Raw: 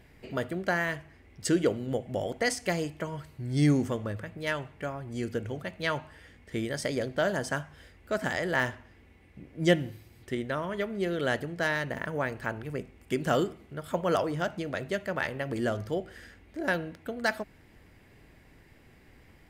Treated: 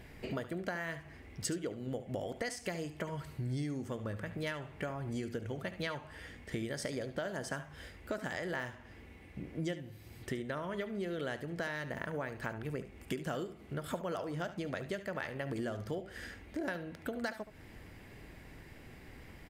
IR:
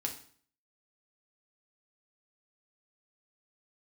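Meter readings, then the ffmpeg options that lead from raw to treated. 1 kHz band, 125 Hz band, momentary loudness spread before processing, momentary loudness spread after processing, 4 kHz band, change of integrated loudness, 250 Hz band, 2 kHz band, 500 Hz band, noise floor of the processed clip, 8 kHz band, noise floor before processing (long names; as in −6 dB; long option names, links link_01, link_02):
−9.0 dB, −7.0 dB, 12 LU, 13 LU, −8.5 dB, −9.0 dB, −8.0 dB, −9.5 dB, −9.0 dB, −54 dBFS, −6.0 dB, −58 dBFS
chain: -filter_complex "[0:a]acompressor=threshold=-39dB:ratio=10,asplit=2[link_01][link_02];[link_02]aecho=0:1:72:0.211[link_03];[link_01][link_03]amix=inputs=2:normalize=0,volume=4dB"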